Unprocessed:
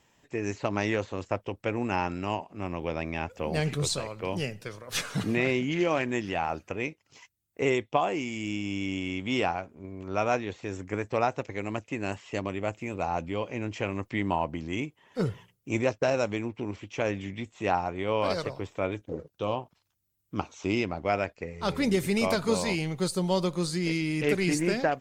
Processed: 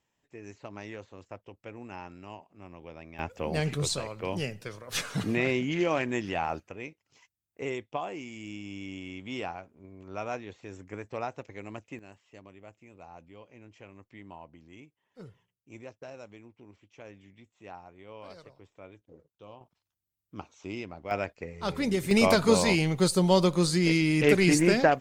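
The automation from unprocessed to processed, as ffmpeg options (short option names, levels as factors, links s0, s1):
-af "asetnsamples=n=441:p=0,asendcmd='3.19 volume volume -1dB;6.6 volume volume -8.5dB;11.99 volume volume -19dB;19.61 volume volume -10dB;21.11 volume volume -2.5dB;22.11 volume volume 4.5dB',volume=0.2"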